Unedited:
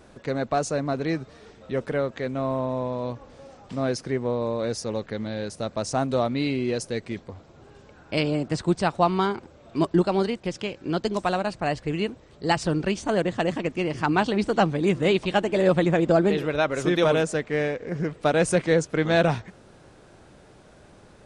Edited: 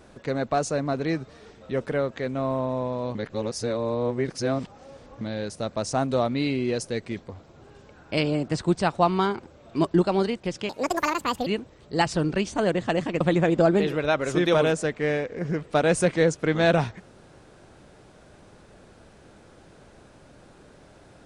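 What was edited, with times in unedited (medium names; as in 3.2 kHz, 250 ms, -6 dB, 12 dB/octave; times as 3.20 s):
3.15–5.21 s: reverse
10.69–11.97 s: speed 165%
13.71–15.71 s: delete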